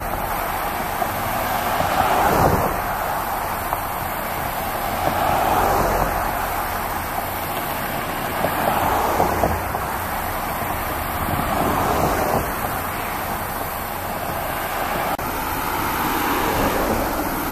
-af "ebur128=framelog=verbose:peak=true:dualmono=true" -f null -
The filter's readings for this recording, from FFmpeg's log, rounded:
Integrated loudness:
  I:         -18.7 LUFS
  Threshold: -28.7 LUFS
Loudness range:
  LRA:         2.6 LU
  Threshold: -38.8 LUFS
  LRA low:   -20.1 LUFS
  LRA high:  -17.5 LUFS
True peak:
  Peak:       -4.1 dBFS